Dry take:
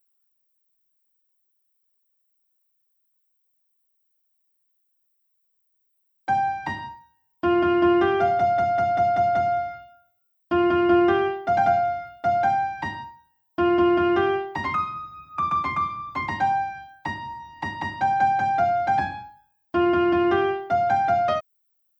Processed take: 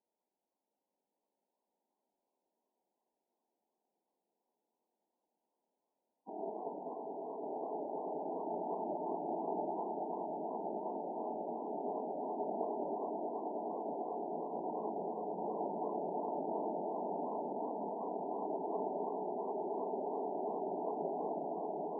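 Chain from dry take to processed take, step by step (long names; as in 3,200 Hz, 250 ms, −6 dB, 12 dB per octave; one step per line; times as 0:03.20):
gate on every frequency bin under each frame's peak −20 dB weak
in parallel at −5 dB: decimation without filtering 25×
on the sum: compressor whose output falls as the input rises −40 dBFS, ratio −1
ring modulation 530 Hz
linear-phase brick-wall band-pass 180–1,000 Hz
low-shelf EQ 340 Hz −5 dB
on a send: echo that builds up and dies away 107 ms, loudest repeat 8, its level −8 dB
on the sum: feedback echo with a swinging delay time 195 ms, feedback 48%, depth 203 cents, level −4 dB
level +2.5 dB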